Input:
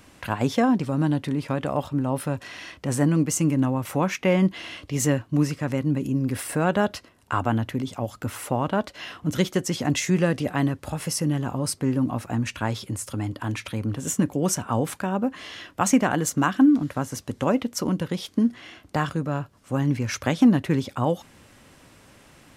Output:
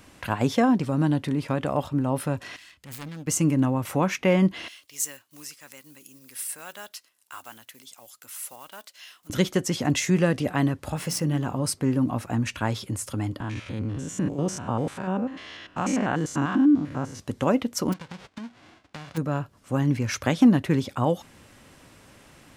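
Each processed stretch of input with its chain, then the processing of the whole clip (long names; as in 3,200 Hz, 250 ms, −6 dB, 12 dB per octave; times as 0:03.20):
0:02.56–0:03.27: phase distortion by the signal itself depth 0.52 ms + guitar amp tone stack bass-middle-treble 5-5-5 + notch filter 5,800 Hz, Q 13
0:04.68–0:09.30: one scale factor per block 7 bits + first difference
0:10.96–0:11.62: running median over 3 samples + mains-hum notches 60/120/180/240/300/360/420 Hz + one half of a high-frequency compander encoder only
0:13.40–0:17.20: spectrum averaged block by block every 100 ms + high-frequency loss of the air 66 metres
0:17.92–0:19.16: spectral envelope flattened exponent 0.1 + head-to-tape spacing loss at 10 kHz 30 dB + downward compressor 8 to 1, threshold −34 dBFS
whole clip: no processing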